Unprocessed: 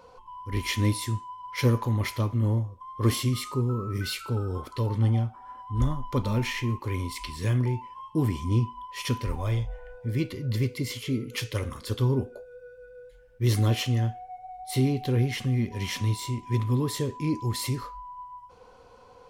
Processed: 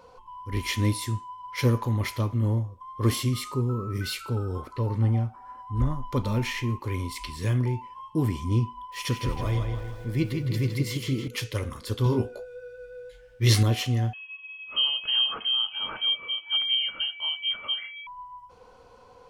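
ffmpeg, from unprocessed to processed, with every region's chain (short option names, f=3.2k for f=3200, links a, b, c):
-filter_complex "[0:a]asettb=1/sr,asplit=3[a][b][c];[a]atrim=end=4.644[d];[b]atrim=start=4.64:end=6.02,asetpts=PTS-STARTPTS,afade=t=in:d=0.004:c=qsin,afade=t=out:st=1.376:d=0.004:c=qsin,acrossover=split=3300[e][f];[f]acompressor=threshold=-58dB:ratio=4:attack=1:release=60[g];[e][g]amix=inputs=2:normalize=0,equalizer=f=3.3k:t=o:w=0.22:g=-8.5[h];[c]atrim=start=6.016[i];[d][h]acrossfade=d=0.004:c1=hsin:c2=qsin[j];[j][i]acrossfade=d=0.004:c1=qsin:c2=hsin,asettb=1/sr,asplit=3[k][l][m];[k]atrim=end=8.924[n];[l]atrim=start=8.92:end=11.28,asetpts=PTS-STARTPTS,afade=t=in:d=0.004:c=qsin,afade=t=out:st=2.356:d=0.004:c=qsin,aecho=1:1:6.1:0.31,atrim=end_sample=104076,aeval=exprs='val(0)*gte(abs(val(0)),0.00335)':c=same,asplit=2[o][p];[p]adelay=161,lowpass=f=4.9k:p=1,volume=-5dB,asplit=2[q][r];[r]adelay=161,lowpass=f=4.9k:p=1,volume=0.5,asplit=2[s][t];[t]adelay=161,lowpass=f=4.9k:p=1,volume=0.5,asplit=2[u][v];[v]adelay=161,lowpass=f=4.9k:p=1,volume=0.5,asplit=2[w][x];[x]adelay=161,lowpass=f=4.9k:p=1,volume=0.5,asplit=2[y][z];[z]adelay=161,lowpass=f=4.9k:p=1,volume=0.5[aa];[o][q][s][u][w][y][aa]amix=inputs=7:normalize=0,atrim=end_sample=104076[ab];[m]atrim=start=11.276[ac];[n][ab]acrossfade=d=0.004:c1=hsin:c2=qsin[ad];[ad][ac]acrossfade=d=0.004:c1=qsin:c2=hsin,asettb=1/sr,asplit=3[ae][af][ag];[ae]atrim=end=12.044[ah];[af]atrim=start=12.04:end=13.63,asetpts=PTS-STARTPTS,afade=t=in:d=0.004:c=qsin,afade=t=out:st=1.586:d=0.004:c=qsin,equalizer=f=3.5k:w=0.37:g=10,asplit=2[ai][aj];[aj]adelay=18,volume=-4.5dB[ak];[ai][ak]amix=inputs=2:normalize=0,atrim=end_sample=70119[al];[ag]atrim=start=13.626[am];[ah][al]acrossfade=d=0.004:c1=hsin:c2=qsin[an];[an][am]acrossfade=d=0.004:c1=qsin:c2=hsin,asettb=1/sr,asplit=3[ao][ap][aq];[ao]atrim=end=14.134[ar];[ap]atrim=start=14.13:end=18.07,asetpts=PTS-STARTPTS,afade=t=in:d=0.004:c=qsin,afade=t=out:st=3.936:d=0.004:c=qsin,equalizer=f=300:t=o:w=0.46:g=-8,lowpass=f=2.8k:t=q:w=0.5098,lowpass=f=2.8k:t=q:w=0.6013,lowpass=f=2.8k:t=q:w=0.9,lowpass=f=2.8k:t=q:w=2.563,afreqshift=-3300[as];[aq]atrim=start=18.066[at];[ar][as]acrossfade=d=0.004:c1=hsin:c2=qsin[au];[au][at]acrossfade=d=0.004:c1=qsin:c2=hsin"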